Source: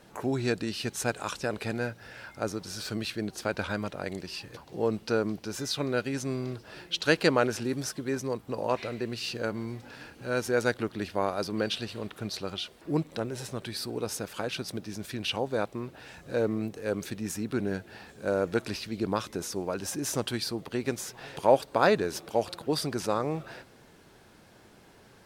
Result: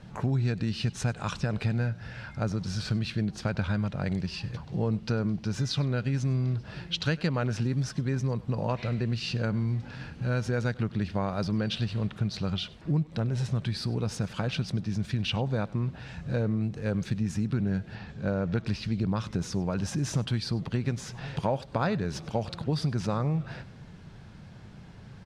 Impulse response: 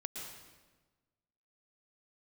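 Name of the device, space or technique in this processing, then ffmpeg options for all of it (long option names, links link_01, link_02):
jukebox: -filter_complex "[0:a]lowpass=5600,lowshelf=frequency=230:width_type=q:width=1.5:gain=11.5,acompressor=threshold=-26dB:ratio=5,asettb=1/sr,asplit=3[link_01][link_02][link_03];[link_01]atrim=end=17.954[link_04];[link_02]atrim=start=17.95:end=18.67,asetpts=PTS-STARTPTS,afade=type=in:duration=0.004:curve=qsin,afade=type=out:start_time=0.716:duration=0.004:curve=qsin,lowpass=5600[link_05];[link_03]atrim=start=18.666[link_06];[link_04][link_05]acrossfade=duration=0.004:curve1=hsin:curve2=qsin[link_07];[link_07][link_06]acrossfade=duration=0.004:curve1=qsin:curve2=hsin,aecho=1:1:98:0.0841,volume=1.5dB"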